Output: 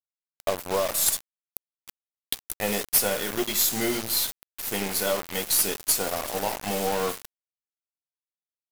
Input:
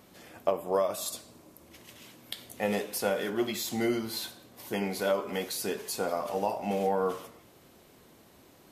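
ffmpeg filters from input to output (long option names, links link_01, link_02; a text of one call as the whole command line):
ffmpeg -i in.wav -af "crystalizer=i=3.5:c=0,aeval=exprs='0.501*(cos(1*acos(clip(val(0)/0.501,-1,1)))-cos(1*PI/2))+0.141*(cos(6*acos(clip(val(0)/0.501,-1,1)))-cos(6*PI/2))+0.112*(cos(8*acos(clip(val(0)/0.501,-1,1)))-cos(8*PI/2))':channel_layout=same,acrusher=bits=4:mix=0:aa=0.000001" out.wav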